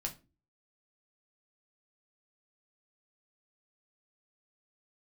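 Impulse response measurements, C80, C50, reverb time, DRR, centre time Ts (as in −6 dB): 21.5 dB, 15.0 dB, 0.30 s, 1.5 dB, 10 ms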